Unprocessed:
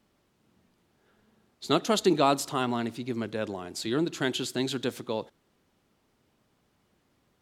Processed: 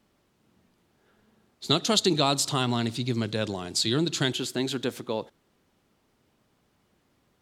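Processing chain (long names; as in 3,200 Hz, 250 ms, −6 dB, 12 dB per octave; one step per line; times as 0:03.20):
0:01.69–0:04.33: octave-band graphic EQ 125/4,000/8,000 Hz +10/+10/+7 dB
downward compressor 2 to 1, threshold −23 dBFS, peak gain reduction 5.5 dB
level +1.5 dB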